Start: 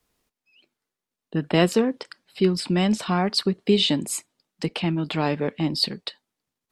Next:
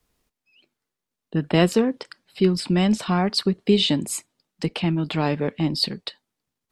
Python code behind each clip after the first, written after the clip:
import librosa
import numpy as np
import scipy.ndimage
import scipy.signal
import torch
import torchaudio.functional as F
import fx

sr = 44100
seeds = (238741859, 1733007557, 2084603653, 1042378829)

y = fx.low_shelf(x, sr, hz=130.0, db=6.5)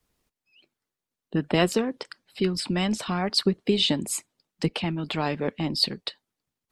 y = fx.hpss(x, sr, part='harmonic', gain_db=-7)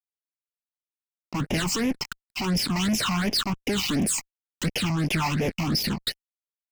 y = fx.cheby_harmonics(x, sr, harmonics=(6,), levels_db=(-35,), full_scale_db=-6.5)
y = fx.fuzz(y, sr, gain_db=42.0, gate_db=-48.0)
y = fx.phaser_stages(y, sr, stages=8, low_hz=460.0, high_hz=1300.0, hz=2.8, feedback_pct=25)
y = F.gain(torch.from_numpy(y), -8.0).numpy()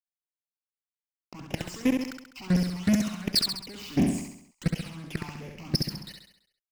y = fx.level_steps(x, sr, step_db=23)
y = fx.echo_feedback(y, sr, ms=67, feedback_pct=51, wet_db=-4)
y = F.gain(torch.from_numpy(y), 3.0).numpy()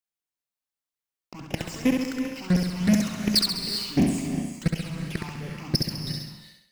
y = fx.rev_gated(x, sr, seeds[0], gate_ms=420, shape='rising', drr_db=6.5)
y = F.gain(torch.from_numpy(y), 2.5).numpy()